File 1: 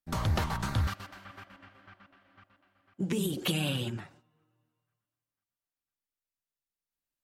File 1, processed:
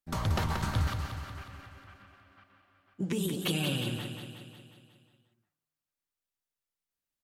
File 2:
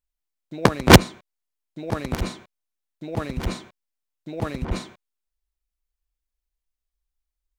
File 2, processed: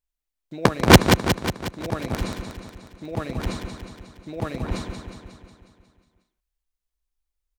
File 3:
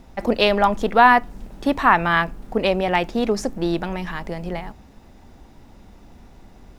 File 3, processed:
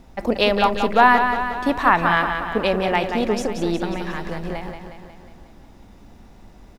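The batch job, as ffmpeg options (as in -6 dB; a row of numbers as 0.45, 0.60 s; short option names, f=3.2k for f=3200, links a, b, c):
-af "aecho=1:1:181|362|543|724|905|1086|1267|1448:0.447|0.264|0.155|0.0917|0.0541|0.0319|0.0188|0.0111,volume=-1dB"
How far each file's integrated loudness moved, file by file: -0.5, -0.5, 0.0 LU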